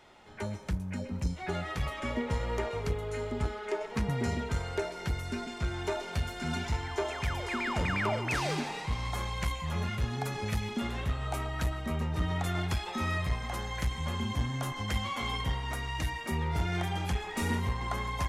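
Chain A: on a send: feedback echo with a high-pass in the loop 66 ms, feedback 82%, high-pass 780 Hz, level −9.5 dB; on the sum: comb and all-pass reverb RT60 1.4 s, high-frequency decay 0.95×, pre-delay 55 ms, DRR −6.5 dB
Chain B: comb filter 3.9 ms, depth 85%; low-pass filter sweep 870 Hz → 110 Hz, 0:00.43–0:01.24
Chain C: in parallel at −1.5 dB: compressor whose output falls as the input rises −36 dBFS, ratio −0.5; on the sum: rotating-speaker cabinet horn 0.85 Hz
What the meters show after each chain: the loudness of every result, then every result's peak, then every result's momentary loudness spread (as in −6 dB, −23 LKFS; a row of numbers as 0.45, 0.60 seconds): −26.5, −33.0, −32.5 LKFS; −9.5, −16.0, −18.0 dBFS; 5, 9, 3 LU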